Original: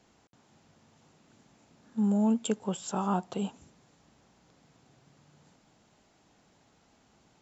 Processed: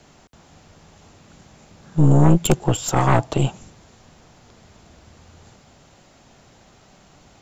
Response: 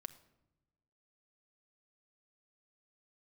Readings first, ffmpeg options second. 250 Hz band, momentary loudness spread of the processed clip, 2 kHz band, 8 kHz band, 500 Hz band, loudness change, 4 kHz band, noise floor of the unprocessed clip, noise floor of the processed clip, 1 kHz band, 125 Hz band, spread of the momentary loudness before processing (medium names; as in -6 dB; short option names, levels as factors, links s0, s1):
+7.5 dB, 9 LU, +18.5 dB, no reading, +12.0 dB, +12.0 dB, +13.0 dB, -66 dBFS, -52 dBFS, +12.0 dB, +21.0 dB, 10 LU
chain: -af "afreqshift=-63,aeval=exprs='0.178*(cos(1*acos(clip(val(0)/0.178,-1,1)))-cos(1*PI/2))+0.0794*(cos(4*acos(clip(val(0)/0.178,-1,1)))-cos(4*PI/2))+0.0316*(cos(5*acos(clip(val(0)/0.178,-1,1)))-cos(5*PI/2))':c=same,volume=2.51"